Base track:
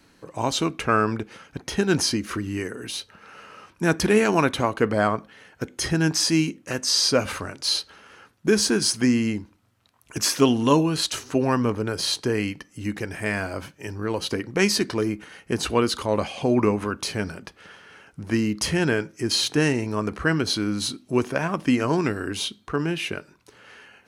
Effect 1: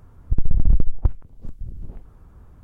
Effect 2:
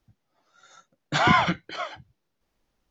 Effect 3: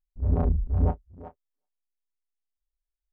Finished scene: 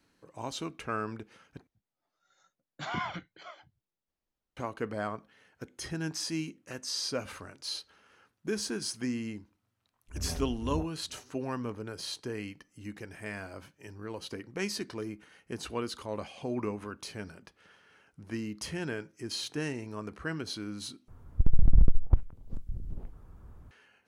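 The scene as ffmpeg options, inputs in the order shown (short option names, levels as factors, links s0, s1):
-filter_complex "[0:a]volume=0.211,asplit=3[s0][s1][s2];[s0]atrim=end=1.674[s3];[2:a]atrim=end=2.9,asetpts=PTS-STARTPTS,volume=0.168[s4];[s1]atrim=start=4.566:end=21.084[s5];[1:a]atrim=end=2.63,asetpts=PTS-STARTPTS,volume=0.631[s6];[s2]atrim=start=23.706[s7];[3:a]atrim=end=3.12,asetpts=PTS-STARTPTS,volume=0.211,afade=t=in:d=0.004:c=hsin,afade=t=out:st=3.116:d=0.004:c=hsin,adelay=9920[s8];[s3][s4]acrossfade=d=0.004:c1=hsin:c2=hsin[s9];[s9][s5]acrossfade=d=0.004:c1=hsin:c2=hsin[s10];[s10][s6]acrossfade=d=0.004:c1=hsin:c2=hsin[s11];[s11][s7]acrossfade=d=0.004:c1=hsin:c2=hsin[s12];[s12][s8]amix=inputs=2:normalize=0"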